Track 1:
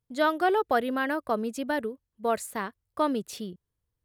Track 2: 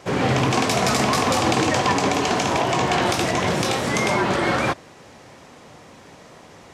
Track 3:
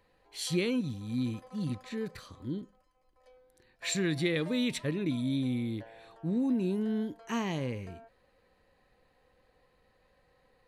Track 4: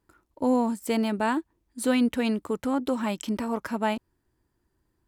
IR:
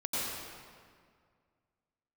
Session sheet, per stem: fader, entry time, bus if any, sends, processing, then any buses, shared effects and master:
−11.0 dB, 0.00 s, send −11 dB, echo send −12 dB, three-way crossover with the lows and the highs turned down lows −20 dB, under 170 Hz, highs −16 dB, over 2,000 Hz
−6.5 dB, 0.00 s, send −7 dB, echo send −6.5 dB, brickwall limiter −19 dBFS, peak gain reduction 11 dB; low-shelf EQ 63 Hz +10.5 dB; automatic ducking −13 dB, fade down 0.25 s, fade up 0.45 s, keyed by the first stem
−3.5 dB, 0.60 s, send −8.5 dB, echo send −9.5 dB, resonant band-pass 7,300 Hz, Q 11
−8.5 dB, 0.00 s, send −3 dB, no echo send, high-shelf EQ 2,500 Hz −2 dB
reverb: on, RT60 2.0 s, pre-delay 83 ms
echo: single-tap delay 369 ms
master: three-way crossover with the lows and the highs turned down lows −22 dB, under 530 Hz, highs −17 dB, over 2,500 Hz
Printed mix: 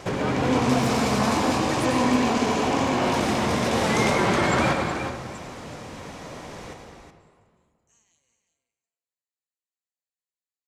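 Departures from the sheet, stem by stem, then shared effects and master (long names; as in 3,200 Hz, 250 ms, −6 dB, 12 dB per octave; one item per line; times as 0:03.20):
stem 2 −6.5 dB → +1.5 dB
stem 3: send −8.5 dB → −15 dB
master: missing three-way crossover with the lows and the highs turned down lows −22 dB, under 530 Hz, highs −17 dB, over 2,500 Hz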